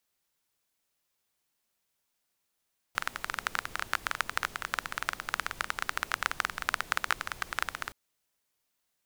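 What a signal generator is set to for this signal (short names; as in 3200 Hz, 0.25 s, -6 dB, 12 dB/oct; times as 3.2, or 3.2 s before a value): rain from filtered ticks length 4.97 s, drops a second 16, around 1400 Hz, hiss -14 dB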